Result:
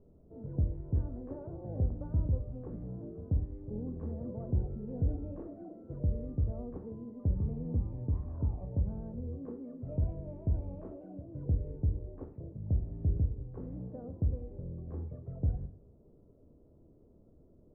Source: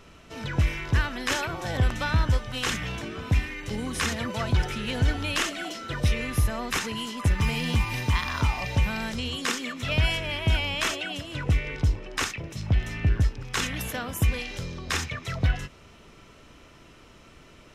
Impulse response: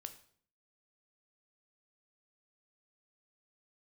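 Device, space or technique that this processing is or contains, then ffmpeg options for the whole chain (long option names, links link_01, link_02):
next room: -filter_complex "[0:a]lowpass=frequency=550:width=0.5412,lowpass=frequency=550:width=1.3066[link_01];[1:a]atrim=start_sample=2205[link_02];[link_01][link_02]afir=irnorm=-1:irlink=0,volume=-2.5dB"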